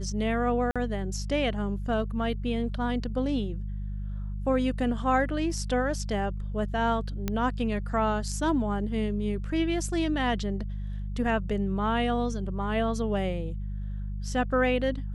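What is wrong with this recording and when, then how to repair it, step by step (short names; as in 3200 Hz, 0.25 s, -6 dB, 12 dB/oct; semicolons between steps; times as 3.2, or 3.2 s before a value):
hum 50 Hz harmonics 4 -33 dBFS
0.71–0.76 gap 46 ms
7.28 pop -14 dBFS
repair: de-click; de-hum 50 Hz, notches 4; interpolate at 0.71, 46 ms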